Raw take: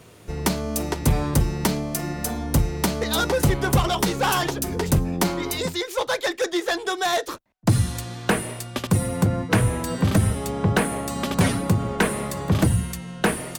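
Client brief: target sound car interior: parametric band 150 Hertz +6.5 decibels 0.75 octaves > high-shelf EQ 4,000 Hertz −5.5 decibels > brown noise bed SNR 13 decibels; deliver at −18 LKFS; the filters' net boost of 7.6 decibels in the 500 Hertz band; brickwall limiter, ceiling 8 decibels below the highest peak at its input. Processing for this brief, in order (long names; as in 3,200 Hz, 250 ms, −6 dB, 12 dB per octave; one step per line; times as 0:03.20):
parametric band 500 Hz +9 dB
brickwall limiter −11.5 dBFS
parametric band 150 Hz +6.5 dB 0.75 octaves
high-shelf EQ 4,000 Hz −5.5 dB
brown noise bed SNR 13 dB
level +3.5 dB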